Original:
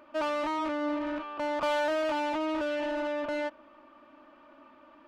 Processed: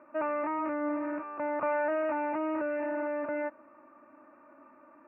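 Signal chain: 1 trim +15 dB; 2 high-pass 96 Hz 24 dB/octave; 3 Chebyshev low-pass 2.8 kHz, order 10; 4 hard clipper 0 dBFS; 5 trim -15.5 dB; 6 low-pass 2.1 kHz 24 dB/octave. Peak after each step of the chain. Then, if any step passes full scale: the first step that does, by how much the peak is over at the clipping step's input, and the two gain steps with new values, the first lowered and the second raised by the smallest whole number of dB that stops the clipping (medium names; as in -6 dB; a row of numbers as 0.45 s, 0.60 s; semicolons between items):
-5.5 dBFS, -5.5 dBFS, -5.0 dBFS, -5.0 dBFS, -20.5 dBFS, -20.5 dBFS; nothing clips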